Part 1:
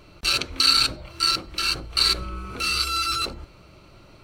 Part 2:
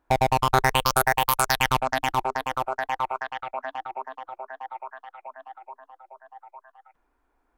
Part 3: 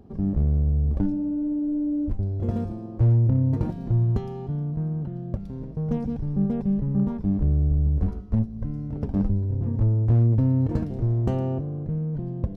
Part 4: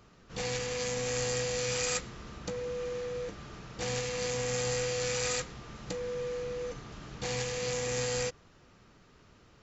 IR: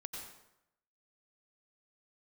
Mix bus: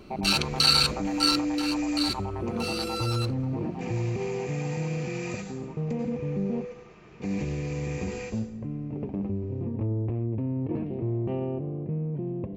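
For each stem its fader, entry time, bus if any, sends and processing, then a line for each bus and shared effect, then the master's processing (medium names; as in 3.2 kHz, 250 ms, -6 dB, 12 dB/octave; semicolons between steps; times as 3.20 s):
1.30 s -2.5 dB -> 1.61 s -10 dB, 0.00 s, no bus, no send, none
-10.5 dB, 0.00 s, bus A, no send, band-pass filter 810 Hz, Q 1.4
-1.0 dB, 0.00 s, muted 6.65–7.20 s, bus A, send -22 dB, none
-5.5 dB, 0.00 s, bus A, send -3.5 dB, comb of notches 280 Hz
bus A: 0.0 dB, cabinet simulation 140–3100 Hz, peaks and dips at 370 Hz +7 dB, 1.5 kHz -10 dB, 2.5 kHz +10 dB; peak limiter -22.5 dBFS, peak gain reduction 10 dB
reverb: on, RT60 0.85 s, pre-delay 83 ms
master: none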